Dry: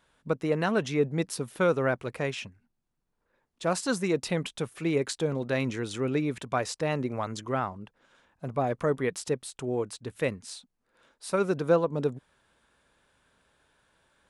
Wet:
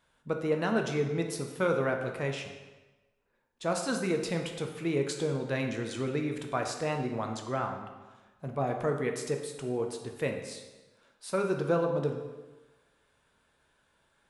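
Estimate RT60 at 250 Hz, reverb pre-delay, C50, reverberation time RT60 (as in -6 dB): 1.2 s, 4 ms, 6.0 dB, 1.2 s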